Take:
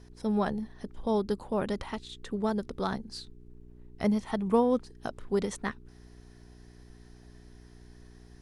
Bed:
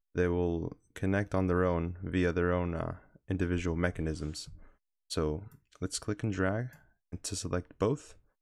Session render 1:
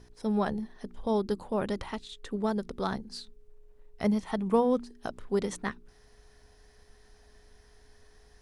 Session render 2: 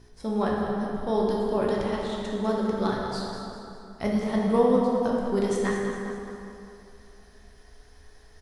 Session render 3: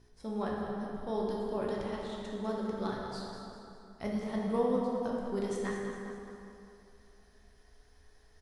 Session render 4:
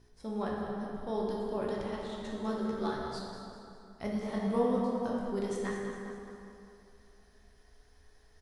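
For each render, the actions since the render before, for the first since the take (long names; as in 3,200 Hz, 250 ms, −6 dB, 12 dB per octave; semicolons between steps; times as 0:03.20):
hum removal 60 Hz, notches 6
on a send: repeating echo 201 ms, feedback 49%, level −10 dB; on the sum: dense smooth reverb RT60 2.7 s, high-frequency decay 0.55×, DRR −3 dB
level −9 dB
0:02.22–0:03.19: double-tracking delay 13 ms −3 dB; 0:04.21–0:05.32: double-tracking delay 25 ms −4.5 dB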